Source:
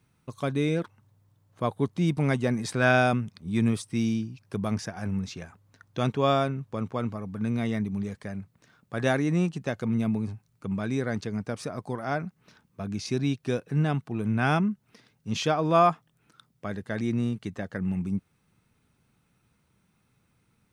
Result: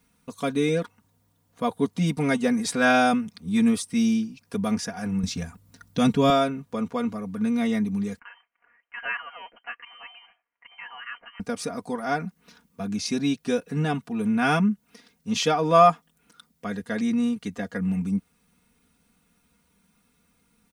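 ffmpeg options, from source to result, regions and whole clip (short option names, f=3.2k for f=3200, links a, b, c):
-filter_complex "[0:a]asettb=1/sr,asplit=3[a][b][c];[a]atrim=end=5.234[d];[b]atrim=start=5.23:end=6.3,asetpts=PTS-STARTPTS,afade=t=in:d=0.004:c=qsin,afade=t=out:st=1.066:d=0.004:c=qsin,bandreject=f=6.4k:w=19,deesser=0.6,bass=f=250:g=11,treble=f=4k:g=5[e];[c]atrim=start=6.296[f];[d][e]acrossfade=d=0.004:c1=hsin:c2=qsin[g];[g][f]acrossfade=d=0.004:c1=qsin:c2=hsin,asettb=1/sr,asplit=3[h][i][j];[h]atrim=end=8.194[k];[i]atrim=start=8.19:end=11.4,asetpts=PTS-STARTPTS,afade=t=in:d=0.004:c=qsin,afade=t=out:st=3.206:d=0.004:c=qsin,highpass=1.4k,lowpass=f=2.8k:t=q:w=0.5098,lowpass=f=2.8k:t=q:w=0.6013,lowpass=f=2.8k:t=q:w=0.9,lowpass=f=2.8k:t=q:w=2.563,afreqshift=-3300[l];[j]atrim=start=11.396[m];[k][l]acrossfade=d=0.004:c1=hsin:c2=qsin[n];[n][m]acrossfade=d=0.004:c1=qsin:c2=hsin,highshelf=f=5.1k:g=7,aecho=1:1:4.2:0.93"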